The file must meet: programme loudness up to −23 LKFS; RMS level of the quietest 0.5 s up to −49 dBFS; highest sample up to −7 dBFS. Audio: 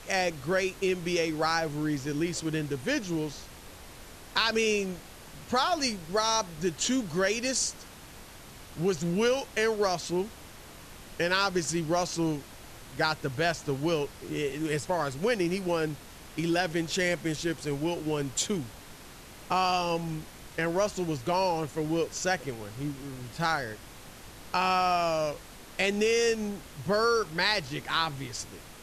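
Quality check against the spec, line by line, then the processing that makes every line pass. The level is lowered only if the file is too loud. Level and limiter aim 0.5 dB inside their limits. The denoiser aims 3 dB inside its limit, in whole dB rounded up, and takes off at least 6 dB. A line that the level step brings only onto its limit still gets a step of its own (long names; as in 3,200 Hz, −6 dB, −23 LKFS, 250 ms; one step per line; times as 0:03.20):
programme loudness −29.0 LKFS: in spec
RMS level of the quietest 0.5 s −48 dBFS: out of spec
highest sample −10.5 dBFS: in spec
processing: broadband denoise 6 dB, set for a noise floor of −48 dBFS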